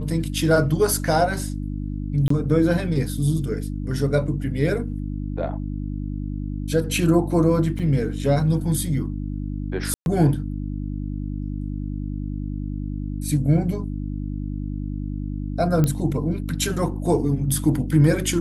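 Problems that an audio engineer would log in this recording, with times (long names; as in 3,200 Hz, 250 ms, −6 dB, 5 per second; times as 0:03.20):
mains hum 50 Hz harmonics 6 −28 dBFS
0:02.28–0:02.30: drop-out 24 ms
0:07.79–0:07.80: drop-out 5.6 ms
0:09.94–0:10.06: drop-out 121 ms
0:15.84: click −9 dBFS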